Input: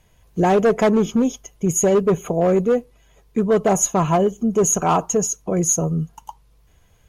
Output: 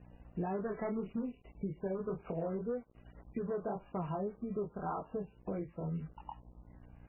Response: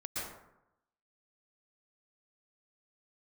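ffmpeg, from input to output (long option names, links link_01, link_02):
-af "lowshelf=frequency=120:gain=3.5,flanger=delay=20:depth=6.3:speed=1.8,aeval=exprs='val(0)+0.00355*(sin(2*PI*60*n/s)+sin(2*PI*2*60*n/s)/2+sin(2*PI*3*60*n/s)/3+sin(2*PI*4*60*n/s)/4+sin(2*PI*5*60*n/s)/5)':channel_layout=same,acompressor=threshold=-30dB:ratio=4,aemphasis=mode=reproduction:type=50fm,acrusher=bits=7:mix=0:aa=0.5,volume=-6.5dB" -ar 11025 -c:a libmp3lame -b:a 8k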